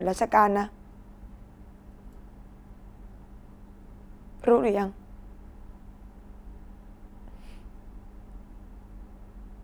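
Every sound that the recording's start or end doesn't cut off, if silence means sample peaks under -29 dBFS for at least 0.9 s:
4.44–4.89

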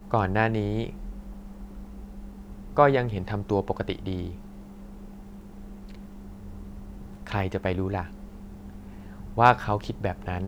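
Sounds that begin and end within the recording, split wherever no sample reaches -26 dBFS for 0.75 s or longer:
2.77–4.27
7.27–8.01

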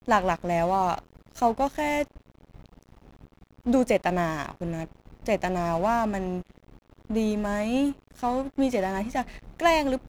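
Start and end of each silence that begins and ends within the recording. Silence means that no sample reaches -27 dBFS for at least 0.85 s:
2.03–3.66

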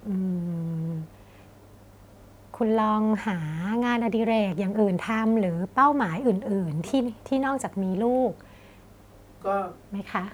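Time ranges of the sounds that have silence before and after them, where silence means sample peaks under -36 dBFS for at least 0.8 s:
2.54–8.41

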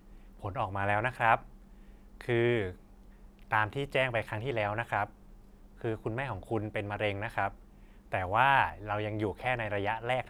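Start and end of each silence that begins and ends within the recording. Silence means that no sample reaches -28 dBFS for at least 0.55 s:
1.35–2.21
2.67–3.52
5.04–5.84
7.48–8.14

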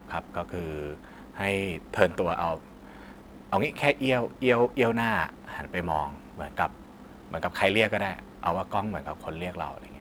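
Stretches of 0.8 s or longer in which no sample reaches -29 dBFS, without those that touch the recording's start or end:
2.55–3.52

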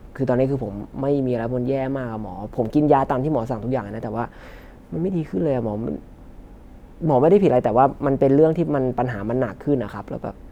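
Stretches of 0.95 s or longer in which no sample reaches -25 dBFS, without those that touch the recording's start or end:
5.96–7.02

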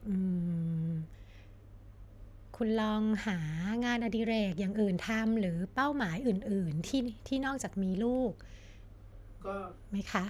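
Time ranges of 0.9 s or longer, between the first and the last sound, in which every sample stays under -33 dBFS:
1–2.61
8.3–9.46

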